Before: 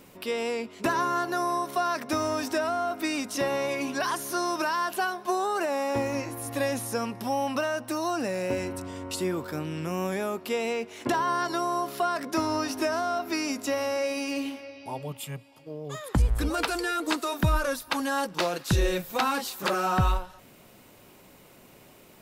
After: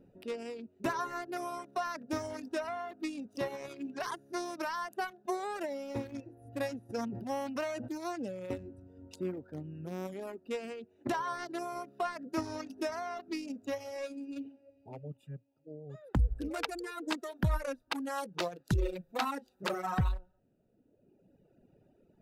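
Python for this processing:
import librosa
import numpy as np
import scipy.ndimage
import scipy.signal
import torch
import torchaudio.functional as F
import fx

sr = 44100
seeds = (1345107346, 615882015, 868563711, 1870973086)

y = fx.wiener(x, sr, points=41)
y = fx.dereverb_blind(y, sr, rt60_s=1.6)
y = fx.sustainer(y, sr, db_per_s=33.0, at=(6.89, 7.87), fade=0.02)
y = F.gain(torch.from_numpy(y), -5.0).numpy()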